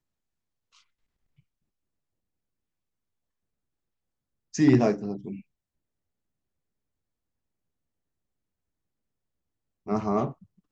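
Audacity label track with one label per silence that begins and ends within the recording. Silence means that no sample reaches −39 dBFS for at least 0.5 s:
5.400000	9.870000	silence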